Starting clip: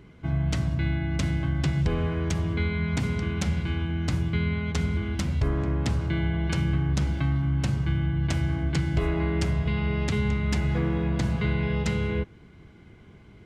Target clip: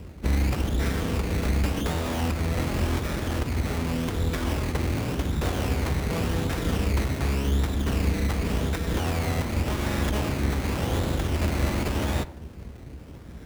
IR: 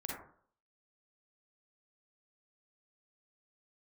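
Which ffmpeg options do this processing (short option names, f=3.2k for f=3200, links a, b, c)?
-filter_complex "[0:a]acrusher=samples=17:mix=1:aa=0.000001:lfo=1:lforange=10.2:lforate=0.88,asplit=2[a][b];[1:a]atrim=start_sample=2205[c];[b][c]afir=irnorm=-1:irlink=0,volume=-16.5dB[d];[a][d]amix=inputs=2:normalize=0,acrossover=split=210[e][f];[e]acompressor=threshold=-36dB:ratio=5[g];[g][f]amix=inputs=2:normalize=0,aeval=exprs='abs(val(0))':c=same,highpass=44,lowshelf=f=270:g=8.5,alimiter=limit=-21.5dB:level=0:latency=1:release=163,equalizer=f=67:w=1.8:g=11,volume=4.5dB"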